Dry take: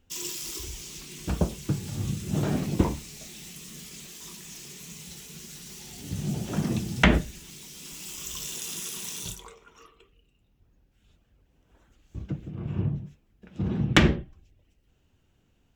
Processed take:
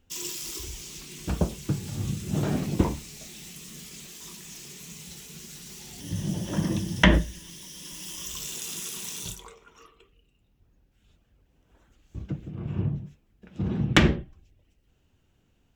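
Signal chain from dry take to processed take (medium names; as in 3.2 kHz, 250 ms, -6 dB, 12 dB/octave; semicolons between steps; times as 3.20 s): 6.00–8.30 s: rippled EQ curve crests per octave 1.2, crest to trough 8 dB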